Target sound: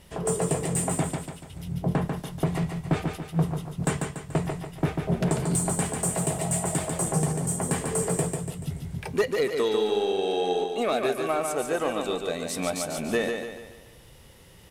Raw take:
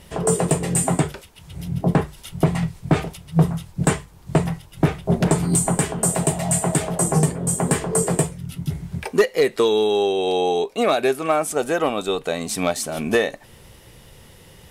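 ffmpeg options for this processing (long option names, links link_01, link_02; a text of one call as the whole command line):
ffmpeg -i in.wav -filter_complex "[0:a]asplit=2[link_01][link_02];[link_02]asoftclip=type=hard:threshold=-20.5dB,volume=-9.5dB[link_03];[link_01][link_03]amix=inputs=2:normalize=0,aecho=1:1:144|288|432|576|720|864:0.562|0.253|0.114|0.0512|0.0231|0.0104,volume=-9dB" out.wav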